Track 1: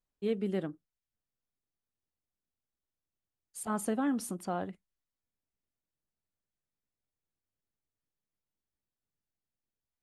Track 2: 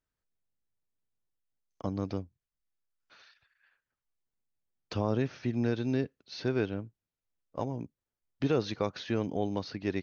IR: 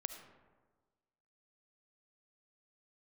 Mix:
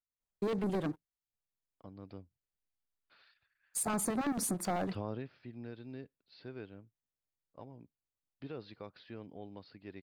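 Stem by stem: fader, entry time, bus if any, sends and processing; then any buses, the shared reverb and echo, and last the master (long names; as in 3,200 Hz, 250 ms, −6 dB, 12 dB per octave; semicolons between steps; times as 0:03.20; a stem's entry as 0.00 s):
−0.5 dB, 0.20 s, no send, leveller curve on the samples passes 3; auto-filter notch square 9.1 Hz 270–3,000 Hz
0:01.95 −16.5 dB → 0:02.53 −7 dB → 0:05.09 −7 dB → 0:05.31 −15.5 dB, 0.00 s, no send, elliptic low-pass filter 4,900 Hz, stop band 40 dB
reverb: not used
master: notch filter 5,400 Hz, Q 22; downward compressor, threshold −31 dBFS, peak gain reduction 7 dB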